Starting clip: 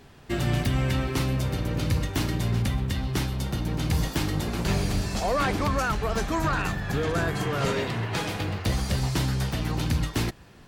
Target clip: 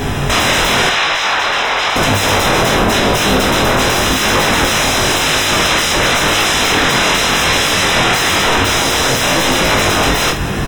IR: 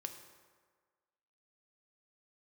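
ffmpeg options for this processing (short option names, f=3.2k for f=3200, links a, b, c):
-filter_complex "[0:a]asplit=2[a][b];[b]acompressor=threshold=-33dB:ratio=6,volume=2.5dB[c];[a][c]amix=inputs=2:normalize=0,asettb=1/sr,asplit=3[d][e][f];[d]atrim=end=5.174[g];[e]atrim=start=5.17:end=5.97,asetpts=PTS-STARTPTS,afade=t=in:d=0.004:c=qsin,afade=t=out:st=0.796:d=0.004:c=qsin,equalizer=f=250:w=4.8:g=-15[h];[f]atrim=start=5.966[i];[g][h]acrossfade=d=0.004:c1=hsin:c2=qsin[j];[j][i]acrossfade=d=0.004:c1=qsin:c2=hsin,aeval=exprs='0.251*sin(PI/2*10*val(0)/0.251)':c=same,flanger=delay=19:depth=4.6:speed=0.93,asuperstop=centerf=4500:order=20:qfactor=6.9,acrossover=split=6200[k][l];[l]acompressor=threshold=-31dB:ratio=4:attack=1:release=60[m];[k][m]amix=inputs=2:normalize=0,asettb=1/sr,asplit=3[n][o][p];[n]atrim=end=0.894[q];[o]atrim=start=0.89:end=1.96,asetpts=PTS-STARTPTS,afade=t=in:d=0.004:c=qsin,afade=t=out:st=1.066:d=0.004:c=qsin,acrossover=split=590 6000:gain=0.141 1 0.126[r][s][t];[r][s][t]amix=inputs=3:normalize=0[u];[p]atrim=start=1.956[v];[q][u]acrossfade=d=0.004:c1=hsin:c2=qsin[w];[w][v]acrossfade=d=0.004:c1=qsin:c2=hsin,aecho=1:1:50|179:0.376|0.141,volume=5.5dB"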